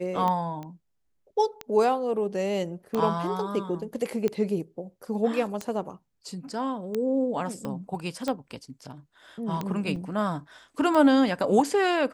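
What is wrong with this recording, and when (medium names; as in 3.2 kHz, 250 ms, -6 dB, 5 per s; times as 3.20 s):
tick 45 rpm -16 dBFS
0.63 s: pop -26 dBFS
7.65 s: pop -21 dBFS
9.96 s: dropout 2.8 ms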